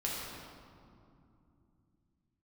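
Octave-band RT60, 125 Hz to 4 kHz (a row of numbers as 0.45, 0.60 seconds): 4.0, 4.2, 2.8, 2.5, 1.7, 1.3 seconds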